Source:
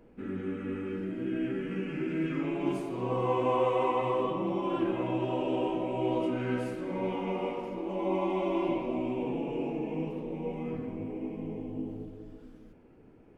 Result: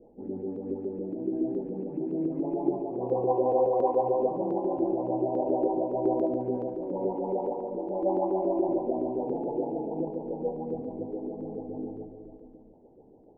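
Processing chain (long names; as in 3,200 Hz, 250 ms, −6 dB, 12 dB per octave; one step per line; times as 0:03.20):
drawn EQ curve 130 Hz 0 dB, 830 Hz +8 dB, 1,300 Hz −29 dB
auto-filter low-pass saw up 7.1 Hz 330–2,900 Hz
feedback echo with a high-pass in the loop 72 ms, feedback 83%, high-pass 510 Hz, level −10 dB
level −5 dB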